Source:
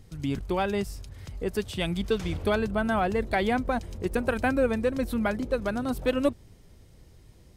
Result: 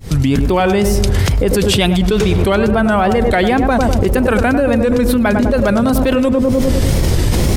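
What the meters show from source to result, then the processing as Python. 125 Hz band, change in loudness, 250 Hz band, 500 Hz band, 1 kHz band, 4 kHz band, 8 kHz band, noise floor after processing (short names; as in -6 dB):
+19.5 dB, +14.0 dB, +15.5 dB, +13.5 dB, +13.0 dB, +16.5 dB, +21.5 dB, -15 dBFS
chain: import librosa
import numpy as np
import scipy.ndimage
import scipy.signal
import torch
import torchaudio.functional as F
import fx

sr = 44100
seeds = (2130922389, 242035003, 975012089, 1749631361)

p1 = fx.fade_in_head(x, sr, length_s=1.2)
p2 = fx.rider(p1, sr, range_db=10, speed_s=0.5)
p3 = p1 + (p2 * 10.0 ** (0.5 / 20.0))
p4 = fx.wow_flutter(p3, sr, seeds[0], rate_hz=2.1, depth_cents=110.0)
p5 = p4 + fx.echo_tape(p4, sr, ms=100, feedback_pct=54, wet_db=-7.5, lp_hz=1000.0, drive_db=6.0, wow_cents=10, dry=0)
p6 = fx.env_flatten(p5, sr, amount_pct=100)
y = p6 * 10.0 ** (1.0 / 20.0)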